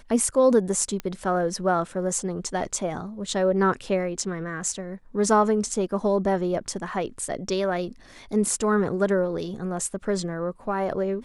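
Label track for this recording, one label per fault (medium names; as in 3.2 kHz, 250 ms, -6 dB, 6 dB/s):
1.000000	1.000000	pop -17 dBFS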